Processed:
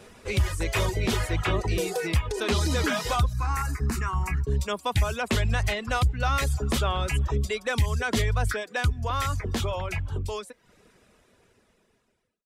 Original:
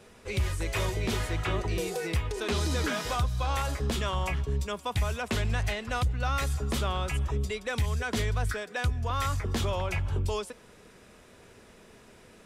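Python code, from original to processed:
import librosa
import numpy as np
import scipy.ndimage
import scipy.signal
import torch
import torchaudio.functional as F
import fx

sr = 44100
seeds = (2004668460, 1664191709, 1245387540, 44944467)

y = fx.fade_out_tail(x, sr, length_s=4.0)
y = fx.dereverb_blind(y, sr, rt60_s=0.56)
y = fx.fixed_phaser(y, sr, hz=1400.0, stages=4, at=(3.33, 4.47))
y = y * librosa.db_to_amplitude(5.0)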